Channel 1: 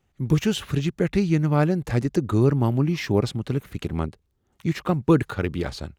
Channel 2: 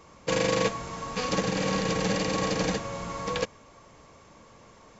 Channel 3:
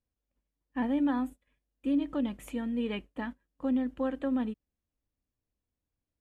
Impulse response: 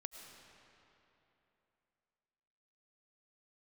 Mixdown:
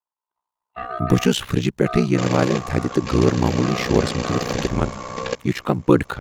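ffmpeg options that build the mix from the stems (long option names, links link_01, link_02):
-filter_complex "[0:a]equalizer=frequency=140:width=1.5:gain=-4,adelay=800,volume=3dB[link_01];[1:a]adelay=1900,volume=-0.5dB[link_02];[2:a]aeval=exprs='val(0)*sin(2*PI*960*n/s)':channel_layout=same,volume=-1.5dB[link_03];[link_01][link_02][link_03]amix=inputs=3:normalize=0,dynaudnorm=framelen=160:gausssize=5:maxgain=8dB,aeval=exprs='val(0)*sin(2*PI*31*n/s)':channel_layout=same"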